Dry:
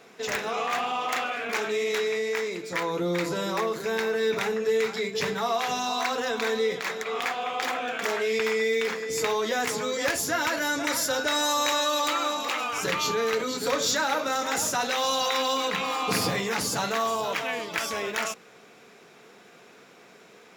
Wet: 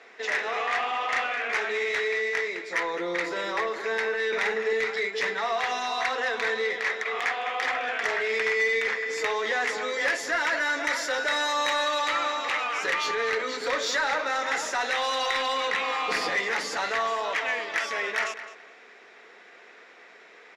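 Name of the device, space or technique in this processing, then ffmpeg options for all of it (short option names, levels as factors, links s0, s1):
intercom: -filter_complex "[0:a]highpass=390,lowpass=4800,equalizer=f=1900:t=o:w=0.41:g=10,asoftclip=type=tanh:threshold=0.126,equalizer=f=140:t=o:w=0.74:g=-4.5,asettb=1/sr,asplit=3[s0][s1][s2];[s0]atrim=end=4.284[s3];[s1]atrim=start=4.28:end=4.73,asetpts=PTS-STARTPTS,afade=t=in:d=0.004:c=qsin,afade=t=out:st=0.446:d=0.004:c=qsin,asplit=2[s4][s5];[s5]adelay=45,volume=0.596[s6];[s4][s6]amix=inputs=2:normalize=0,atrim=end_sample=19845[s7];[s2]atrim=start=4.726[s8];[s3][s7]acrossfade=d=0.004:c1=hsin:c2=qsin[s9];[s9][s8]acrossfade=d=0.004:c1=qsin:c2=hsin,asplit=2[s10][s11];[s11]adelay=211,lowpass=f=5000:p=1,volume=0.237,asplit=2[s12][s13];[s13]adelay=211,lowpass=f=5000:p=1,volume=0.25,asplit=2[s14][s15];[s15]adelay=211,lowpass=f=5000:p=1,volume=0.25[s16];[s10][s12][s14][s16]amix=inputs=4:normalize=0"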